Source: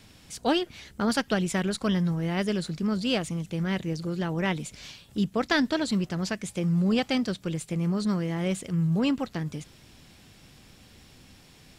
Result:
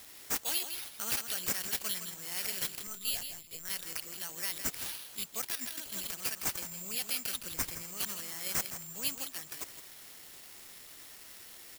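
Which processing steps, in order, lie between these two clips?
differentiator; peak limiter -30.5 dBFS, peak gain reduction 11 dB; 2.87–3.70 s: LPC vocoder at 8 kHz pitch kept; echo from a far wall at 28 m, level -8 dB; careless resampling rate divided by 6×, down none, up zero stuff; 5.55–6.11 s: compressor with a negative ratio -43 dBFS, ratio -1; 7.36–7.83 s: bass shelf 160 Hz +9 dB; trim +2 dB

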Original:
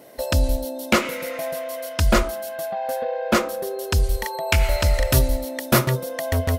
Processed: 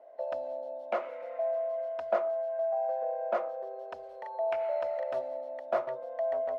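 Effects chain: ladder band-pass 710 Hz, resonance 70%; trim -1.5 dB

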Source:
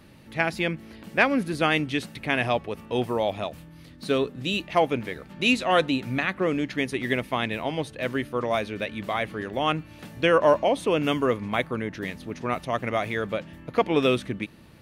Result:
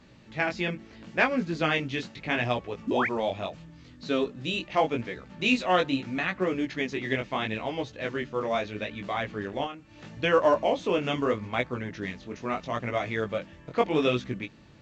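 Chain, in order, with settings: 2.87–3.07 s: painted sound rise 210–2600 Hz -23 dBFS; 9.64–10.08 s: compression 8:1, threshold -33 dBFS, peak gain reduction 14 dB; chorus 0.77 Hz, delay 16 ms, depth 6.4 ms; A-law 128 kbps 16 kHz

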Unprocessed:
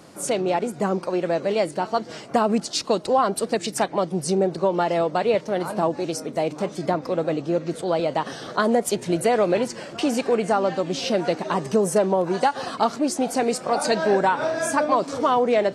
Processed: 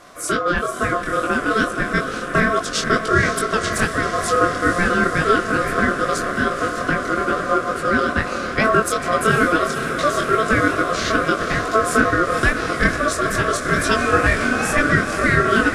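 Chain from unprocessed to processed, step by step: echo that smears into a reverb 512 ms, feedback 78%, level -9 dB; chorus 2.3 Hz, delay 18 ms, depth 7.7 ms; ring modulator 880 Hz; trim +8.5 dB

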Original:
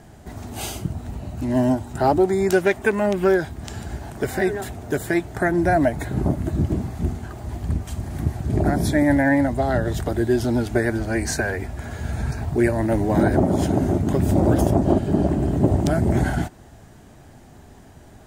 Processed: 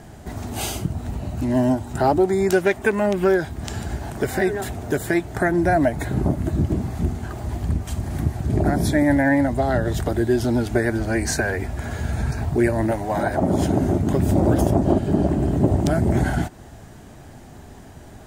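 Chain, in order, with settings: in parallel at 0 dB: compression, threshold -27 dBFS, peak gain reduction 14.5 dB; 12.91–13.42 s: on the sum: resonant low shelf 510 Hz -7.5 dB, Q 1.5; trim -2 dB

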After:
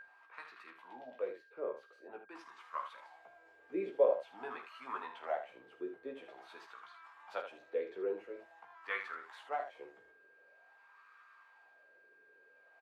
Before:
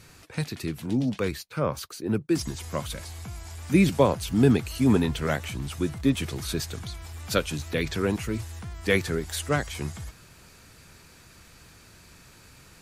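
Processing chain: pre-emphasis filter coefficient 0.9; wah-wah 0.47 Hz 420–1200 Hz, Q 5.1; three-band isolator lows -21 dB, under 310 Hz, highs -23 dB, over 3.1 kHz; whistle 1.6 kHz -63 dBFS; on a send: early reflections 16 ms -4.5 dB, 49 ms -11 dB, 79 ms -9 dB; on the sum: trim +14.5 dB

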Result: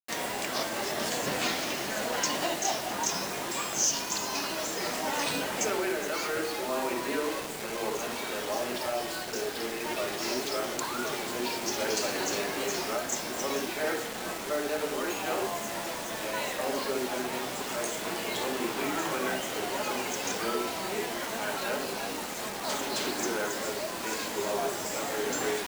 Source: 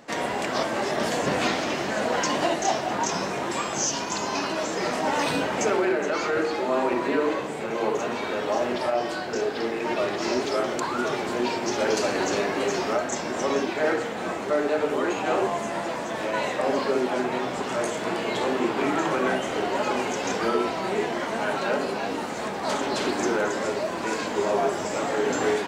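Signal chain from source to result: treble shelf 2.7 kHz +10 dB; bit crusher 5-bit; trim -8 dB

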